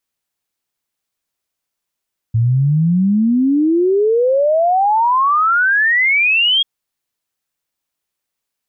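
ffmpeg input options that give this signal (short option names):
-f lavfi -i "aevalsrc='0.299*clip(min(t,4.29-t)/0.01,0,1)*sin(2*PI*110*4.29/log(3300/110)*(exp(log(3300/110)*t/4.29)-1))':d=4.29:s=44100"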